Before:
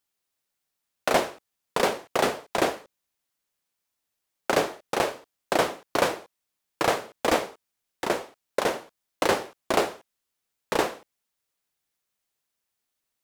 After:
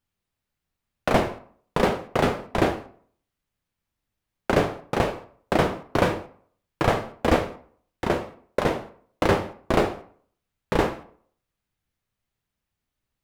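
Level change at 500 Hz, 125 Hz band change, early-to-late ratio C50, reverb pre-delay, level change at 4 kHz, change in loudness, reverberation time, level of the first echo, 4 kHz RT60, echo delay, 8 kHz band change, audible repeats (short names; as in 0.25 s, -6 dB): +2.0 dB, +13.5 dB, 13.5 dB, 8 ms, -2.5 dB, +2.0 dB, 0.50 s, none, 0.35 s, none, -7.0 dB, none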